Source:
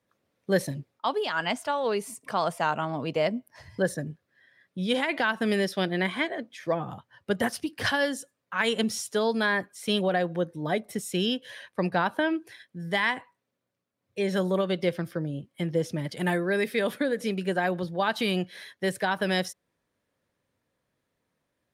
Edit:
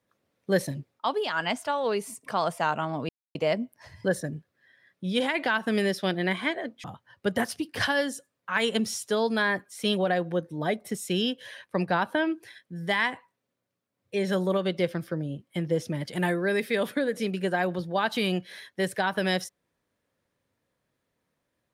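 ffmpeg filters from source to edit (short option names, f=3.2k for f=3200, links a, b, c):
-filter_complex "[0:a]asplit=3[a][b][c];[a]atrim=end=3.09,asetpts=PTS-STARTPTS,afade=t=out:st=3.086:d=0.004:c=hsin,apad=pad_dur=0.26[d];[b]atrim=start=3.09:end=6.582,asetpts=PTS-STARTPTS,afade=t=in:d=0.004:c=hsin[e];[c]atrim=start=6.878[f];[d][e]concat=n=2:v=0:a=1[g];[g][f]acrossfade=d=0.004:c1=hsin:c2=hsin"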